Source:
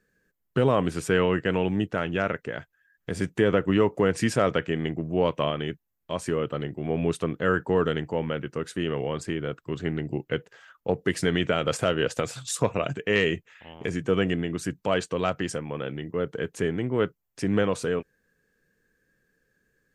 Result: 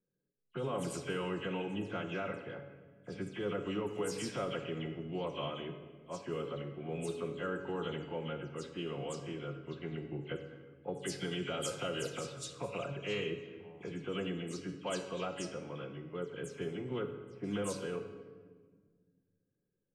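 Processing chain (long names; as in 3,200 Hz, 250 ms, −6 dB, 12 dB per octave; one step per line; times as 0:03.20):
every frequency bin delayed by itself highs early, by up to 111 ms
brickwall limiter −16.5 dBFS, peak gain reduction 6 dB
low-shelf EQ 93 Hz −9.5 dB
tuned comb filter 140 Hz, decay 0.75 s, harmonics all, mix 70%
low-pass that shuts in the quiet parts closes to 600 Hz, open at −32 dBFS
high-shelf EQ 5,200 Hz +11 dB
notch filter 1,800 Hz, Q 5.6
convolution reverb RT60 1.6 s, pre-delay 6 ms, DRR 6 dB
level −2.5 dB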